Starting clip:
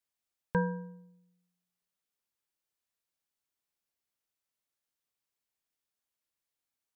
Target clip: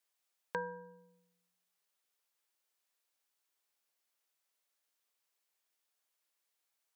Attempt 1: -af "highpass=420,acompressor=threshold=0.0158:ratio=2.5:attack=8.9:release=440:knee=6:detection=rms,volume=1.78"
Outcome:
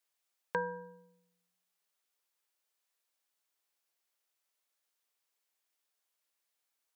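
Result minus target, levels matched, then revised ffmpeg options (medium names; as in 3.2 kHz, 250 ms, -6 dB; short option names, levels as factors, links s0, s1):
compression: peak gain reduction -4 dB
-af "highpass=420,acompressor=threshold=0.00708:ratio=2.5:attack=8.9:release=440:knee=6:detection=rms,volume=1.78"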